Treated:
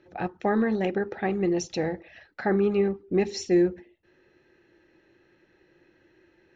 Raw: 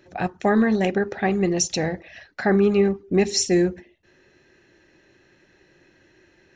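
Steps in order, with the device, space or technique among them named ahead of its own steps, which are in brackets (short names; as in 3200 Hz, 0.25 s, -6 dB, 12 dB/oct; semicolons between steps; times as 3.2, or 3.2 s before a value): inside a cardboard box (LPF 4200 Hz 12 dB/oct; small resonant body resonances 340/480/850/1300 Hz, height 6 dB); gain -6.5 dB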